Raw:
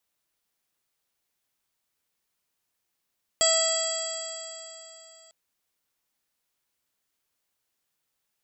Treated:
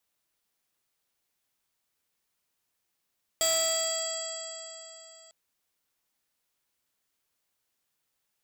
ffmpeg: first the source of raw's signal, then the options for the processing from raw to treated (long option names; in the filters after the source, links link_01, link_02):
-f lavfi -i "aevalsrc='0.0668*pow(10,-3*t/3.32)*sin(2*PI*651.39*t)+0.0224*pow(10,-3*t/3.32)*sin(2*PI*1305.12*t)+0.0224*pow(10,-3*t/3.32)*sin(2*PI*1963.52*t)+0.00841*pow(10,-3*t/3.32)*sin(2*PI*2628.88*t)+0.0473*pow(10,-3*t/3.32)*sin(2*PI*3303.46*t)+0.00708*pow(10,-3*t/3.32)*sin(2*PI*3989.48*t)+0.0501*pow(10,-3*t/3.32)*sin(2*PI*4689.06*t)+0.01*pow(10,-3*t/3.32)*sin(2*PI*5404.29*t)+0.0075*pow(10,-3*t/3.32)*sin(2*PI*6137.15*t)+0.0178*pow(10,-3*t/3.32)*sin(2*PI*6889.54*t)+0.0891*pow(10,-3*t/3.32)*sin(2*PI*7663.27*t)':duration=1.9:sample_rate=44100"
-af "asoftclip=type=tanh:threshold=-22dB"